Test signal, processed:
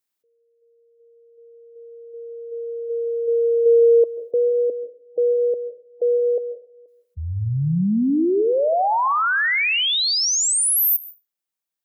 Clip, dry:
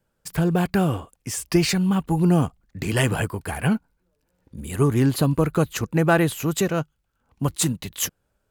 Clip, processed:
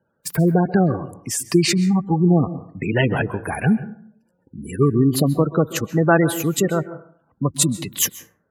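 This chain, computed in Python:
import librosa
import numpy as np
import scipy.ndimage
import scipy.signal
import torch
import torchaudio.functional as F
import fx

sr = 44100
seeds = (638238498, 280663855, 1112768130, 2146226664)

p1 = fx.spec_gate(x, sr, threshold_db=-20, keep='strong')
p2 = scipy.signal.sosfilt(scipy.signal.butter(2, 130.0, 'highpass', fs=sr, output='sos'), p1)
p3 = fx.high_shelf(p2, sr, hz=11000.0, db=6.0)
p4 = fx.rider(p3, sr, range_db=5, speed_s=2.0)
p5 = p3 + (p4 * 10.0 ** (2.0 / 20.0))
p6 = fx.rev_plate(p5, sr, seeds[0], rt60_s=0.56, hf_ratio=0.4, predelay_ms=120, drr_db=14.5)
y = p6 * 10.0 ** (-3.5 / 20.0)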